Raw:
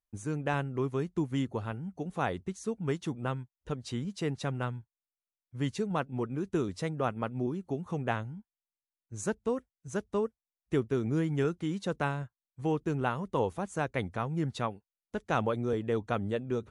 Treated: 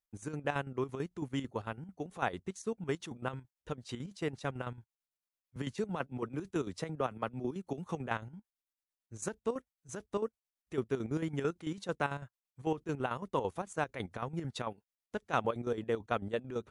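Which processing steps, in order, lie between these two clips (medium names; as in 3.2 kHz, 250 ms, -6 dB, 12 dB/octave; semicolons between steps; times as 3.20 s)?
bass shelf 250 Hz -7 dB; square tremolo 9 Hz, depth 65%, duty 55%; 5.56–8.08 s: three bands compressed up and down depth 40%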